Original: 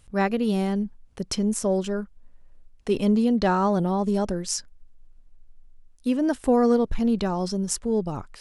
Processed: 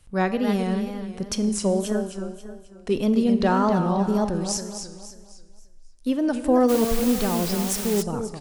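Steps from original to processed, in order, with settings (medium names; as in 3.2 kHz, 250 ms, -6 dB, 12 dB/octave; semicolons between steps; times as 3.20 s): feedback delay 269 ms, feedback 41%, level -8 dB; Schroeder reverb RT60 1.3 s, combs from 29 ms, DRR 12 dB; wow and flutter 84 cents; 6.68–8.01 s: added noise white -33 dBFS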